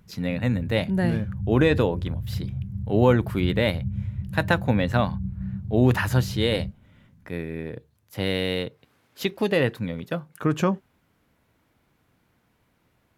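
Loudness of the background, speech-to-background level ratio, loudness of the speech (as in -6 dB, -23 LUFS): -32.5 LUFS, 7.5 dB, -25.0 LUFS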